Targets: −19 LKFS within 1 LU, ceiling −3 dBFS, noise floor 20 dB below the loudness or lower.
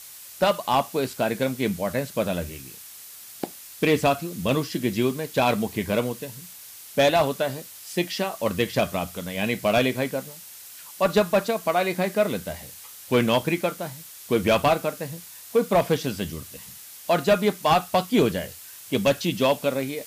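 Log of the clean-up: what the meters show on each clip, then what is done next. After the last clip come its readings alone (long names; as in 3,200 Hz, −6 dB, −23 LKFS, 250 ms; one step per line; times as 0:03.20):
background noise floor −43 dBFS; target noise floor −44 dBFS; integrated loudness −24.0 LKFS; sample peak −9.5 dBFS; target loudness −19.0 LKFS
→ broadband denoise 6 dB, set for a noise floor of −43 dBFS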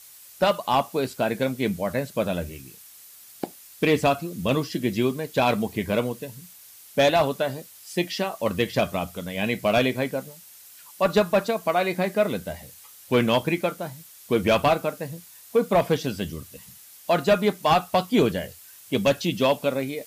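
background noise floor −48 dBFS; integrated loudness −24.0 LKFS; sample peak −9.5 dBFS; target loudness −19.0 LKFS
→ level +5 dB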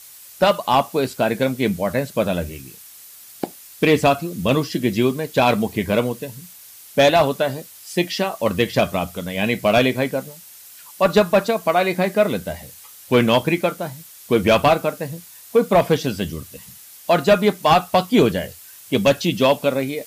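integrated loudness −19.0 LKFS; sample peak −4.5 dBFS; background noise floor −43 dBFS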